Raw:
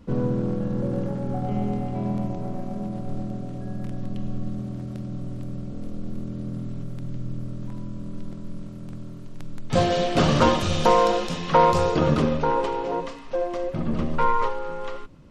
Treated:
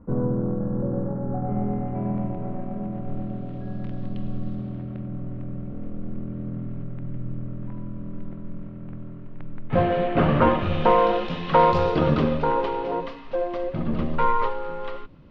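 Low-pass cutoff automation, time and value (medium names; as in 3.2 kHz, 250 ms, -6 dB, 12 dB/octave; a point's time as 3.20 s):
low-pass 24 dB/octave
1.14 s 1.4 kHz
2.33 s 2.5 kHz
2.94 s 2.5 kHz
3.75 s 4 kHz
4.55 s 4 kHz
5.10 s 2.4 kHz
10.45 s 2.4 kHz
11.67 s 4.1 kHz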